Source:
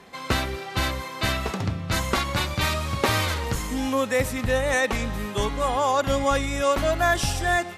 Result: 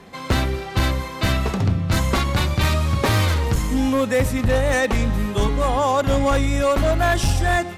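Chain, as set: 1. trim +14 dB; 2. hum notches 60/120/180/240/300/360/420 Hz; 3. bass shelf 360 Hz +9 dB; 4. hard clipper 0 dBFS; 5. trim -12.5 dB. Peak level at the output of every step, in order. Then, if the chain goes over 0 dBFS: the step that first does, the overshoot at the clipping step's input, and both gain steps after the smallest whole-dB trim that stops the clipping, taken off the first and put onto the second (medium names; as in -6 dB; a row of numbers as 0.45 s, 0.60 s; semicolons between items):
+6.5 dBFS, +6.5 dBFS, +9.0 dBFS, 0.0 dBFS, -12.5 dBFS; step 1, 9.0 dB; step 1 +5 dB, step 5 -3.5 dB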